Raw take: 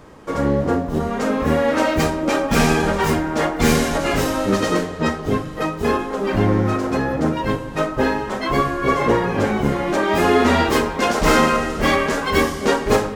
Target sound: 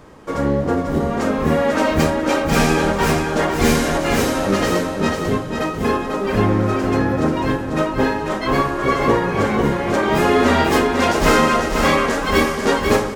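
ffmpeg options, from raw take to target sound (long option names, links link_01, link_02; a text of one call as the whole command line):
ffmpeg -i in.wav -af "aecho=1:1:493|986|1479|1972:0.531|0.175|0.0578|0.0191" out.wav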